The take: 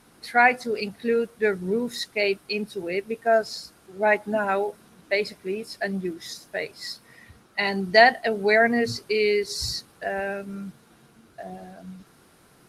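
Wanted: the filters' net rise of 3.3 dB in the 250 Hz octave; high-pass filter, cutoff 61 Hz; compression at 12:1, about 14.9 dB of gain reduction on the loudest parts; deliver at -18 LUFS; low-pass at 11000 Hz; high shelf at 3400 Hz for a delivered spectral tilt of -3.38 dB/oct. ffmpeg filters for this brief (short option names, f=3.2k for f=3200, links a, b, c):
-af "highpass=61,lowpass=11k,equalizer=f=250:t=o:g=4,highshelf=f=3.4k:g=-3.5,acompressor=threshold=-25dB:ratio=12,volume=13.5dB"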